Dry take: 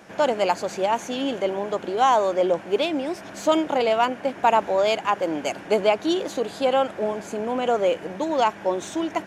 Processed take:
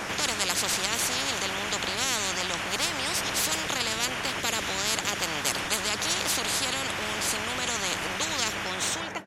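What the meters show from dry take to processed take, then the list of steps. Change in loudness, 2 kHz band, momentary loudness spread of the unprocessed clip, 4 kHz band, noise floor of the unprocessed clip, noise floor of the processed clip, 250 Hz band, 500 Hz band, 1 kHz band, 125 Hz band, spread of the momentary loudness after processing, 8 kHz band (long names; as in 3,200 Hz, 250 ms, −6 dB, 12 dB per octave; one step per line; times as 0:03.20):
−3.5 dB, +4.0 dB, 7 LU, +6.0 dB, −40 dBFS, −34 dBFS, −10.5 dB, −15.0 dB, −9.5 dB, +2.0 dB, 3 LU, +13.5 dB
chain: fade-out on the ending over 0.83 s
every bin compressed towards the loudest bin 10 to 1
level −3.5 dB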